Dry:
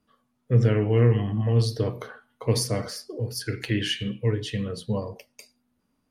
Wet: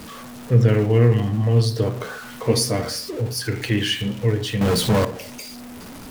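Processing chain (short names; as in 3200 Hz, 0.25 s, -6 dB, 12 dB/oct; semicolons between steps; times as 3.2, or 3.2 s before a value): zero-crossing step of -35.5 dBFS; 2.43–3.11 doubler 13 ms -5 dB; 4.61–5.05 sample leveller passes 3; reverb RT60 0.45 s, pre-delay 69 ms, DRR 18.5 dB; gain +3.5 dB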